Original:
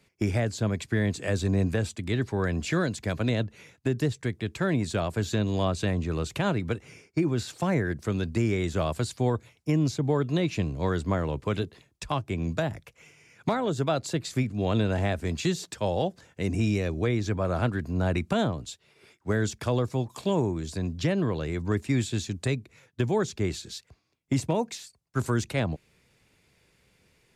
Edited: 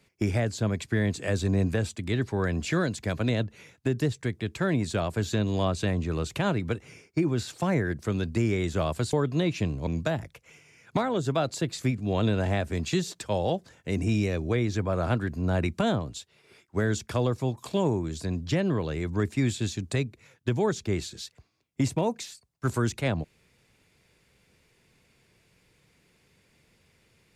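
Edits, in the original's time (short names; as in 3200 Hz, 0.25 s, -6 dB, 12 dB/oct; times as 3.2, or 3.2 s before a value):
9.13–10.1 cut
10.84–12.39 cut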